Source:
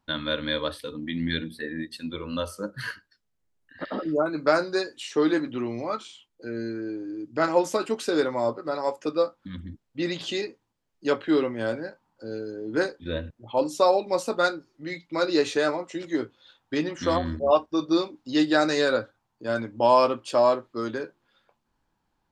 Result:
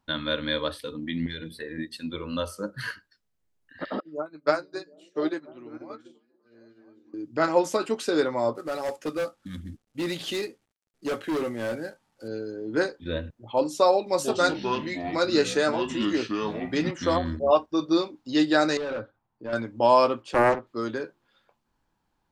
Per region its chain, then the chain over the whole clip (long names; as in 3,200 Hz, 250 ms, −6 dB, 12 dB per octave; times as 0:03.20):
0:01.26–0:01.78: comb filter 2 ms, depth 54% + downward compressor 10 to 1, threshold −30 dBFS
0:04.00–0:07.14: low-shelf EQ 84 Hz −10.5 dB + echo through a band-pass that steps 245 ms, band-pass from 170 Hz, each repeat 0.7 octaves, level −2 dB + expander for the loud parts 2.5 to 1, over −37 dBFS
0:08.55–0:12.28: variable-slope delta modulation 64 kbit/s + notch filter 1,000 Hz, Q 7.4 + hard clipping −24.5 dBFS
0:14.06–0:16.91: high-shelf EQ 7,500 Hz +9 dB + delay with pitch and tempo change per echo 119 ms, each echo −6 semitones, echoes 3, each echo −6 dB
0:18.77–0:19.53: hard clipping −26.5 dBFS + head-to-tape spacing loss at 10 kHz 28 dB
0:20.22–0:20.67: high-shelf EQ 3,900 Hz −10.5 dB + highs frequency-modulated by the lows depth 0.7 ms
whole clip: no processing